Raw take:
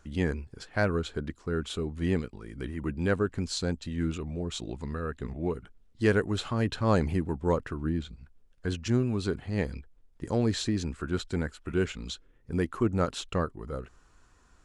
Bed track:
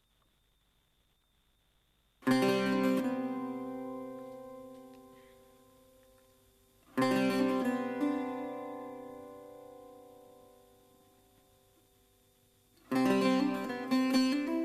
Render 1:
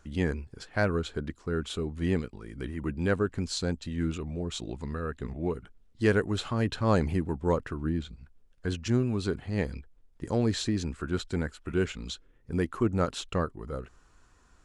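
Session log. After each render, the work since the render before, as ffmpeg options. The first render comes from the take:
-af anull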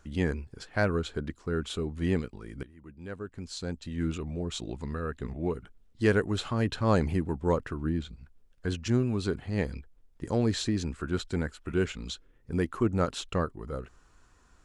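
-filter_complex "[0:a]asplit=2[a][b];[a]atrim=end=2.63,asetpts=PTS-STARTPTS,afade=t=out:st=2.626:d=0.004:c=hsin:silence=0.125893[c];[b]atrim=start=2.63,asetpts=PTS-STARTPTS,afade=t=in:d=1.47:c=qua:silence=0.125893[d];[c][d]concat=n=2:v=0:a=1"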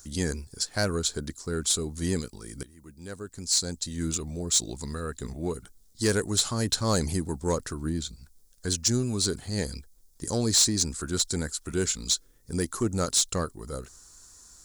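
-af "aexciter=amount=10.9:drive=5.1:freq=4.1k,asoftclip=type=tanh:threshold=-14.5dB"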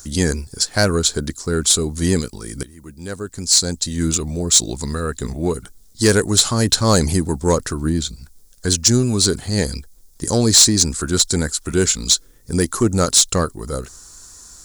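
-af "volume=10.5dB"

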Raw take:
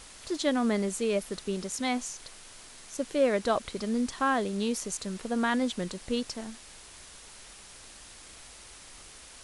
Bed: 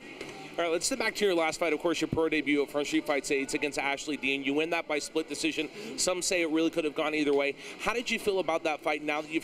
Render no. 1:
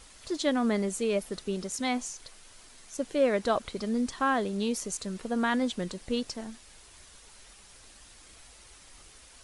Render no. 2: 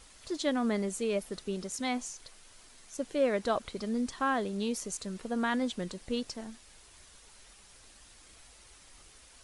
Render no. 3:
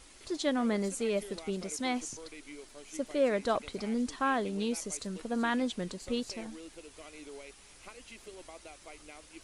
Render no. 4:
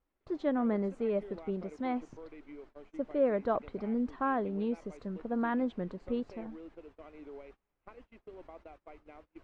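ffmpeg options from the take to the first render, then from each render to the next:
-af "afftdn=nr=6:nf=-50"
-af "volume=-3dB"
-filter_complex "[1:a]volume=-21dB[a];[0:a][a]amix=inputs=2:normalize=0"
-af "lowpass=1.3k,agate=range=-24dB:threshold=-53dB:ratio=16:detection=peak"

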